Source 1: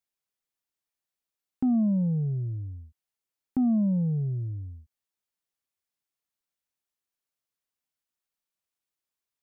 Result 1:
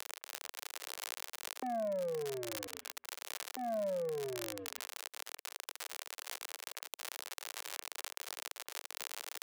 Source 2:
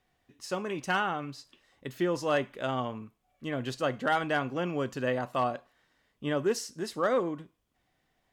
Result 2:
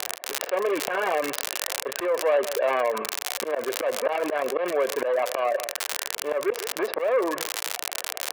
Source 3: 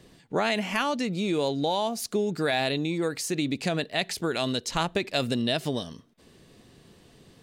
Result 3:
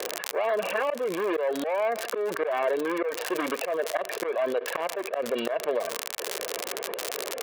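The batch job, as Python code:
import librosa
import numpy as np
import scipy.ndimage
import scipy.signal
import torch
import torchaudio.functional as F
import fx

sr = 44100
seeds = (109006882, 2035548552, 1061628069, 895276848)

p1 = scipy.signal.medfilt(x, 41)
p2 = scipy.signal.sosfilt(scipy.signal.butter(4, 2600.0, 'lowpass', fs=sr, output='sos'), p1)
p3 = p2 + 0.48 * np.pad(p2, (int(1.8 * sr / 1000.0), 0))[:len(p2)]
p4 = p3 + fx.echo_single(p3, sr, ms=146, db=-23.5, dry=0)
p5 = fx.dereverb_blind(p4, sr, rt60_s=0.6)
p6 = fx.dmg_crackle(p5, sr, seeds[0], per_s=87.0, level_db=-41.0)
p7 = fx.rider(p6, sr, range_db=10, speed_s=2.0)
p8 = p6 + (p7 * 10.0 ** (-1.0 / 20.0))
p9 = scipy.signal.sosfilt(scipy.signal.butter(4, 460.0, 'highpass', fs=sr, output='sos'), p8)
p10 = fx.auto_swell(p9, sr, attack_ms=210.0)
p11 = fx.env_flatten(p10, sr, amount_pct=70)
y = p11 * 10.0 ** (1.0 / 20.0)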